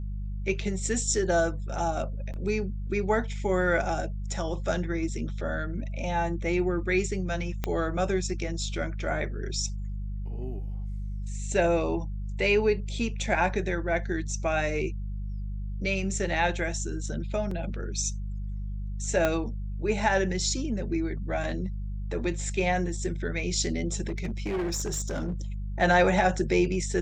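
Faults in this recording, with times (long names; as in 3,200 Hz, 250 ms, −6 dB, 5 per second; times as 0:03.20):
mains hum 50 Hz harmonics 4 −33 dBFS
0:02.33–0:02.34: drop-out 8.4 ms
0:07.64: click −14 dBFS
0:17.51: drop-out 3.6 ms
0:19.25: click −11 dBFS
0:24.08–0:25.34: clipping −26 dBFS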